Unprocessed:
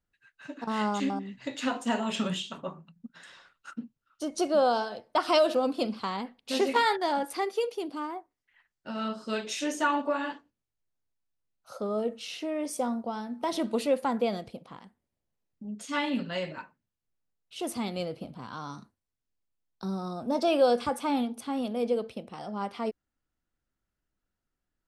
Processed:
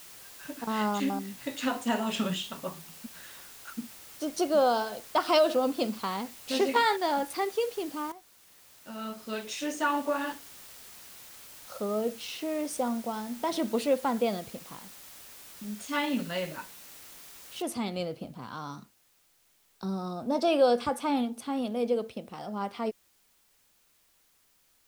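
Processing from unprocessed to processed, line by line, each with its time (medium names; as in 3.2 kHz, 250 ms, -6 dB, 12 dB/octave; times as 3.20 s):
8.12–10.29 s: fade in, from -13 dB
17.62 s: noise floor step -49 dB -67 dB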